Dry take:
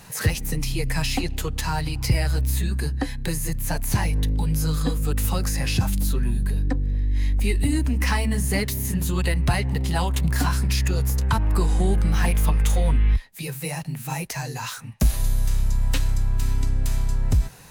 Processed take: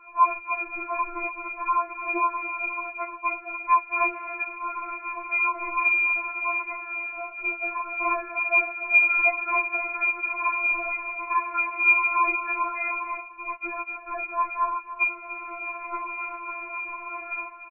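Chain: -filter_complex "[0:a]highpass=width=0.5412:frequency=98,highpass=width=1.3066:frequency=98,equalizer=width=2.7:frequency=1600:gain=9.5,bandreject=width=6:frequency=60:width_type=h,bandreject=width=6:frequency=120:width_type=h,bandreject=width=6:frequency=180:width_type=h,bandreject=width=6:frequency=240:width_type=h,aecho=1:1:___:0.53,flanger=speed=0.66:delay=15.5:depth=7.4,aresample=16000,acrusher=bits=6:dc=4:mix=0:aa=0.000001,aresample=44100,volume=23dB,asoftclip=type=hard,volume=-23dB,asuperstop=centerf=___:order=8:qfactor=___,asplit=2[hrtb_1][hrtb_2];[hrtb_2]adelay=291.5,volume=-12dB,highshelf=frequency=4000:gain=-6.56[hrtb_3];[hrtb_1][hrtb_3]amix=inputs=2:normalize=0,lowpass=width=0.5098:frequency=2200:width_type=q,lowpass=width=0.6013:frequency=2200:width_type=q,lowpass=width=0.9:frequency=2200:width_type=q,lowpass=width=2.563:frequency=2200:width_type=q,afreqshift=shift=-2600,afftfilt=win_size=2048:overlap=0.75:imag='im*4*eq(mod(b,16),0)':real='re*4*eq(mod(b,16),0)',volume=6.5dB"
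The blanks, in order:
1.9, 670, 1.1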